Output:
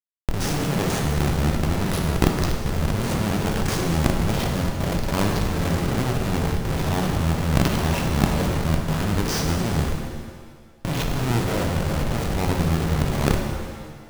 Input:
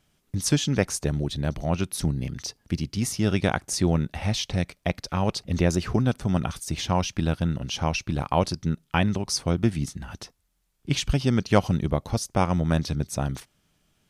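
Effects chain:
every bin's largest magnitude spread in time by 120 ms
comparator with hysteresis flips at −20 dBFS
compressor whose output falls as the input rises −26 dBFS, ratio −0.5
reverb with rising layers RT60 1.6 s, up +7 semitones, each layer −8 dB, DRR 2.5 dB
level +4 dB

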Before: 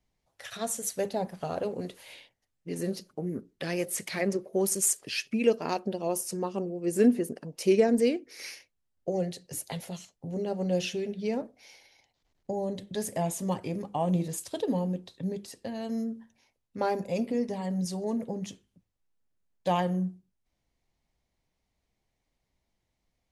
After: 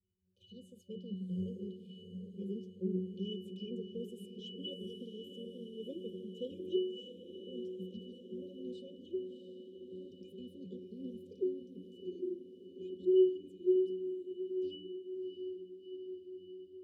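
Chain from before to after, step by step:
gliding playback speed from 108% → 169%
resonances in every octave F#, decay 0.57 s
brick-wall band-stop 570–2,400 Hz
on a send: feedback delay with all-pass diffusion 693 ms, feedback 66%, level −9 dB
on the sum: level +13.5 dB

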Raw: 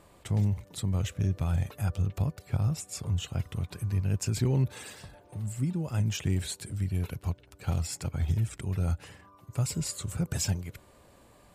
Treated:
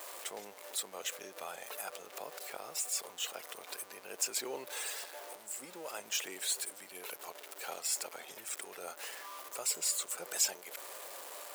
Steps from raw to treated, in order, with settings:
converter with a step at zero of −41 dBFS
high-pass filter 460 Hz 24 dB per octave
high-shelf EQ 8,700 Hz +8.5 dB
level −1.5 dB

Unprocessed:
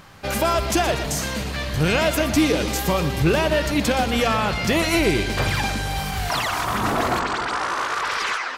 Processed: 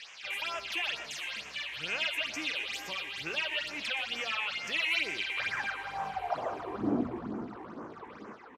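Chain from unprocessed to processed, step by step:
noise in a band 390–6,200 Hz −38 dBFS
all-pass phaser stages 8, 2.2 Hz, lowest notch 170–4,100 Hz
band-pass filter sweep 2,700 Hz → 220 Hz, 0:05.27–0:07.11
on a send: repeating echo 424 ms, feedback 51%, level −17.5 dB

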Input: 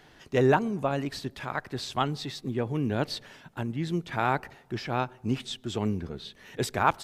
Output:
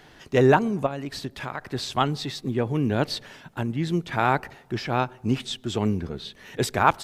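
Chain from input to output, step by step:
0:00.86–0:01.61: downward compressor 10 to 1, threshold −32 dBFS, peak gain reduction 8.5 dB
level +4.5 dB

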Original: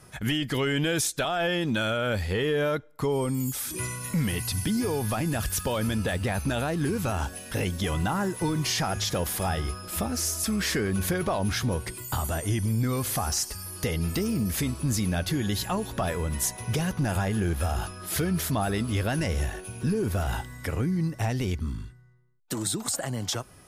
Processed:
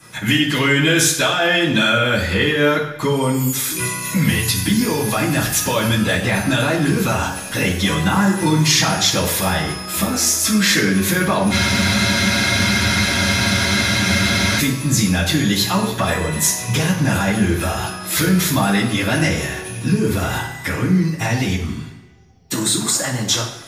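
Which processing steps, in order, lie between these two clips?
high-shelf EQ 7,700 Hz +6 dB
mains-hum notches 50/100/150 Hz
convolution reverb RT60 1.0 s, pre-delay 3 ms, DRR −11.5 dB
frozen spectrum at 0:11.54, 3.05 s

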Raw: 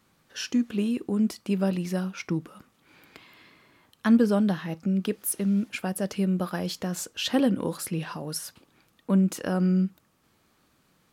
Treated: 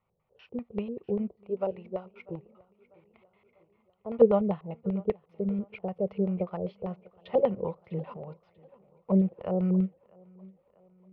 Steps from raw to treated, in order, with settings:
0:01.46–0:04.19: parametric band 200 Hz −12.5 dB 0.56 octaves
auto-filter low-pass square 5.1 Hz 450–2,000 Hz
high-frequency loss of the air 320 metres
phaser with its sweep stopped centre 680 Hz, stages 4
tape delay 645 ms, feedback 63%, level −17 dB, low-pass 5,200 Hz
expander for the loud parts 1.5 to 1, over −48 dBFS
level +6.5 dB

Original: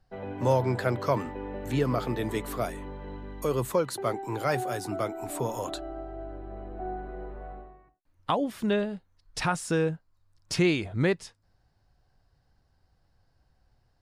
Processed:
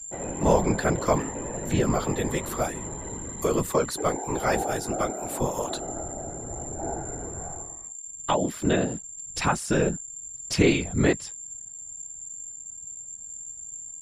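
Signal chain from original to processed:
steady tone 7,300 Hz −40 dBFS
random phases in short frames
level +3 dB

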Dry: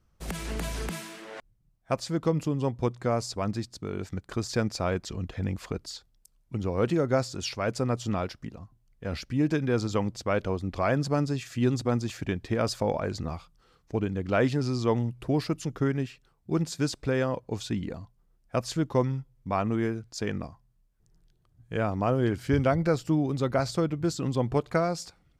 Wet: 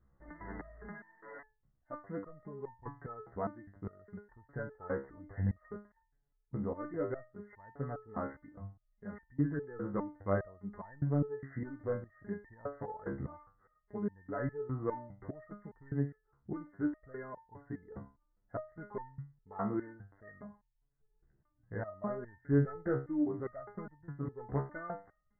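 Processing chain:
in parallel at 0 dB: downward compressor, threshold −38 dBFS, peak gain reduction 18 dB
on the sum: gain into a clipping stage and back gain 16 dB
linear-phase brick-wall low-pass 2,100 Hz
step-sequenced resonator 4.9 Hz 68–900 Hz

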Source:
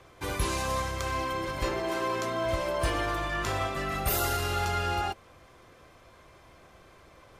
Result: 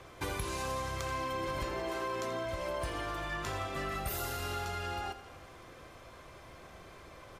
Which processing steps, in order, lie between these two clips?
downward compressor 10 to 1, threshold −36 dBFS, peak gain reduction 13.5 dB
repeating echo 84 ms, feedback 59%, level −12 dB
level +2.5 dB

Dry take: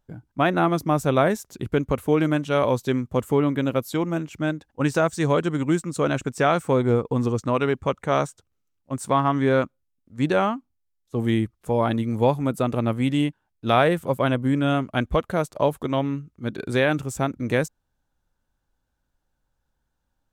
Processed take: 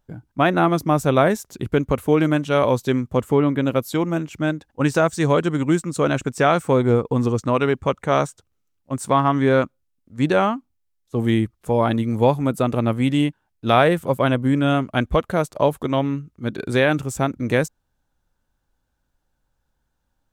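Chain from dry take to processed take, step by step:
0:03.15–0:03.65: high-shelf EQ 7,700 Hz → 4,100 Hz −6.5 dB
level +3 dB

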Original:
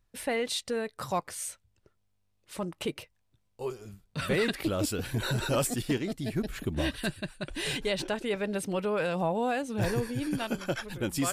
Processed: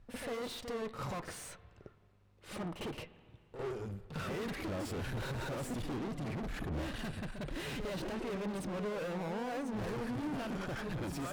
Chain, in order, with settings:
high-shelf EQ 7,100 Hz −8.5 dB
tube saturation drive 47 dB, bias 0.6
in parallel at +1.5 dB: downward compressor, threshold −58 dBFS, peak gain reduction 10.5 dB
on the sum: high-shelf EQ 2,400 Hz −10 dB
on a send: backwards echo 53 ms −7.5 dB
on the sum: spring reverb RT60 2.3 s, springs 40/54/58 ms, chirp 45 ms, DRR 15.5 dB
level +7 dB

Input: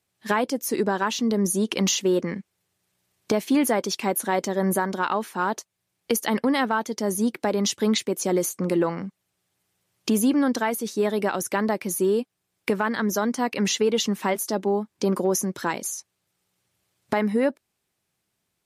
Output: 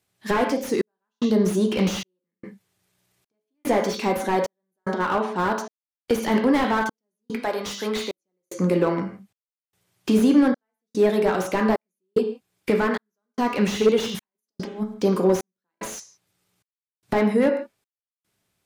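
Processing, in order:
0:07.35–0:08.12: high-pass filter 820 Hz 6 dB per octave
0:14.01–0:14.94: compressor whose output falls as the input rises −30 dBFS, ratio −0.5
convolution reverb, pre-delay 9 ms, DRR 4 dB
gate pattern "xxxxxx..." 111 BPM −60 dB
0:04.93–0:05.36: Bessel low-pass filter 3,500 Hz, order 2
slew-rate limiting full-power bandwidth 93 Hz
level +2 dB

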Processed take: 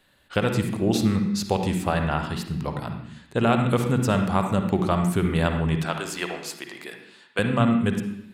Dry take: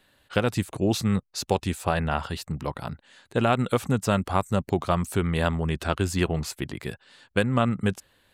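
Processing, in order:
0:05.77–0:07.39: high-pass filter 540 Hz 12 dB per octave
on a send: convolution reverb, pre-delay 46 ms, DRR 4.5 dB

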